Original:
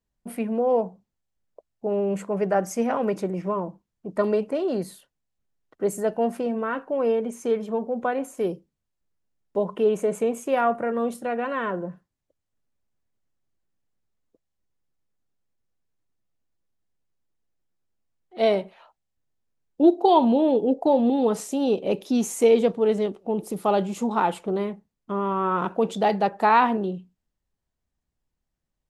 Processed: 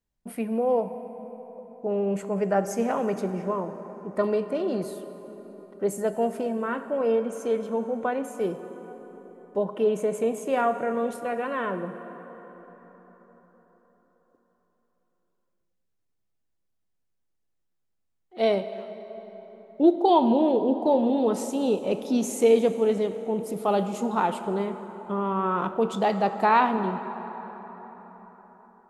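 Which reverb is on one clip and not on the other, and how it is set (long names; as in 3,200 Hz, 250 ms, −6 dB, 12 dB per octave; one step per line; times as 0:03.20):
dense smooth reverb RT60 4.9 s, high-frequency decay 0.5×, DRR 9.5 dB
level −2 dB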